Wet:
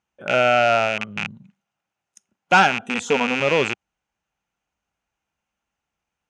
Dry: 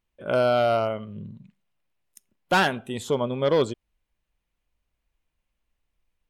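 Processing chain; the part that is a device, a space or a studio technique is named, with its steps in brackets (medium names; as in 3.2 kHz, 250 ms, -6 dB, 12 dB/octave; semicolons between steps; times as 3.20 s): 2.82–3.40 s: comb 4.2 ms, depth 88%; car door speaker with a rattle (rattle on loud lows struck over -36 dBFS, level -14 dBFS; cabinet simulation 97–8500 Hz, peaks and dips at 200 Hz +3 dB, 800 Hz +10 dB, 1.4 kHz +9 dB, 2.7 kHz +3 dB, 4.1 kHz -3 dB, 6.3 kHz +8 dB)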